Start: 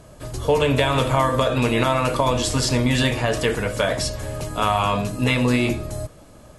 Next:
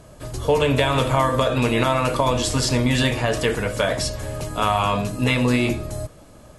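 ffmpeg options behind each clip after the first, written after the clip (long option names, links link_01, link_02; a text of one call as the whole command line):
ffmpeg -i in.wav -af anull out.wav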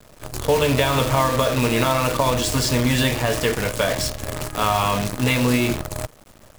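ffmpeg -i in.wav -af "acrusher=bits=5:dc=4:mix=0:aa=0.000001" out.wav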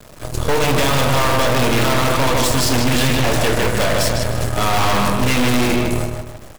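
ffmpeg -i in.wav -filter_complex "[0:a]asplit=2[link_01][link_02];[link_02]adelay=154,lowpass=frequency=3700:poles=1,volume=-4.5dB,asplit=2[link_03][link_04];[link_04]adelay=154,lowpass=frequency=3700:poles=1,volume=0.4,asplit=2[link_05][link_06];[link_06]adelay=154,lowpass=frequency=3700:poles=1,volume=0.4,asplit=2[link_07][link_08];[link_08]adelay=154,lowpass=frequency=3700:poles=1,volume=0.4,asplit=2[link_09][link_10];[link_10]adelay=154,lowpass=frequency=3700:poles=1,volume=0.4[link_11];[link_01][link_03][link_05][link_07][link_09][link_11]amix=inputs=6:normalize=0,aeval=exprs='0.668*(cos(1*acos(clip(val(0)/0.668,-1,1)))-cos(1*PI/2))+0.168*(cos(6*acos(clip(val(0)/0.668,-1,1)))-cos(6*PI/2))':channel_layout=same,asoftclip=type=hard:threshold=-16dB,volume=6dB" out.wav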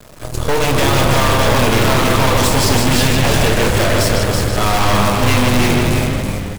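ffmpeg -i in.wav -filter_complex "[0:a]asplit=6[link_01][link_02][link_03][link_04][link_05][link_06];[link_02]adelay=328,afreqshift=-100,volume=-4dB[link_07];[link_03]adelay=656,afreqshift=-200,volume=-12dB[link_08];[link_04]adelay=984,afreqshift=-300,volume=-19.9dB[link_09];[link_05]adelay=1312,afreqshift=-400,volume=-27.9dB[link_10];[link_06]adelay=1640,afreqshift=-500,volume=-35.8dB[link_11];[link_01][link_07][link_08][link_09][link_10][link_11]amix=inputs=6:normalize=0,volume=1dB" out.wav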